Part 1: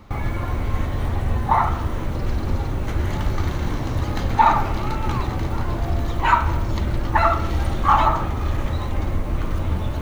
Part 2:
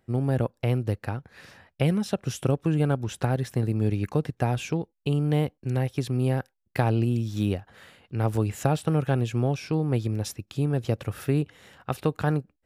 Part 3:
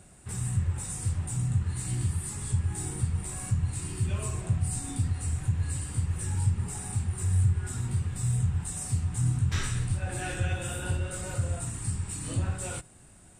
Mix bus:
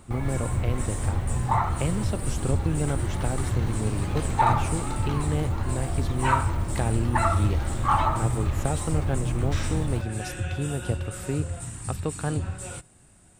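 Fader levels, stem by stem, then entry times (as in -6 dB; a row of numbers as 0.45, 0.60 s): -6.5, -4.5, -1.5 dB; 0.00, 0.00, 0.00 s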